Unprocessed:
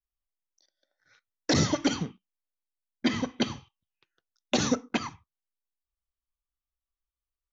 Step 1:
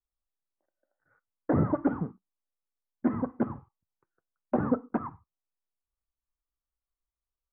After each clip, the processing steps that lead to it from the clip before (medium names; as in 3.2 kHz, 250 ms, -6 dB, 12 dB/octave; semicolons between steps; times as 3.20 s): steep low-pass 1.4 kHz 36 dB/octave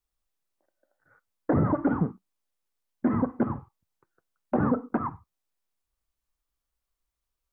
peak limiter -21.5 dBFS, peak gain reduction 7.5 dB; trim +7 dB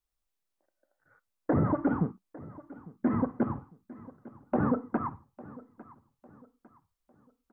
feedback delay 852 ms, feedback 37%, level -19.5 dB; trim -2.5 dB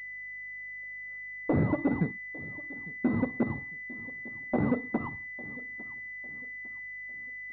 hum 50 Hz, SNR 34 dB; class-D stage that switches slowly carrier 2 kHz